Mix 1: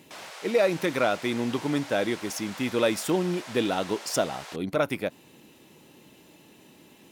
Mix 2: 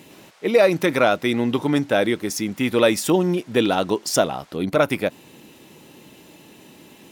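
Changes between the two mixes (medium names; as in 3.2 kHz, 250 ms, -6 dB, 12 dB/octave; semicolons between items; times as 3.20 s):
speech +7.0 dB; background -11.5 dB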